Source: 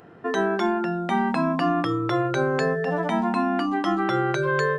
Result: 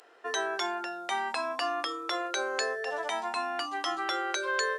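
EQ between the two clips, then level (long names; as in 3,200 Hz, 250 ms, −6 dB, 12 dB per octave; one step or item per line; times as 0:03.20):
high-pass filter 430 Hz 24 dB per octave
high-shelf EQ 3,800 Hz +6.5 dB
parametric band 6,200 Hz +10 dB 2.6 octaves
−8.0 dB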